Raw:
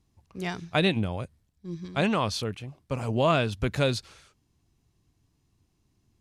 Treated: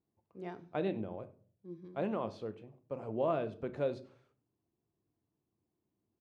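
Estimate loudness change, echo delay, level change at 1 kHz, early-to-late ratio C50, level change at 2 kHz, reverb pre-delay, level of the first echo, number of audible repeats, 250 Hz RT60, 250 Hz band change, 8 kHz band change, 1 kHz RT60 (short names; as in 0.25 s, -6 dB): -10.5 dB, 98 ms, -11.0 dB, 16.0 dB, -19.0 dB, 6 ms, -23.5 dB, 1, 0.60 s, -10.5 dB, under -30 dB, 0.40 s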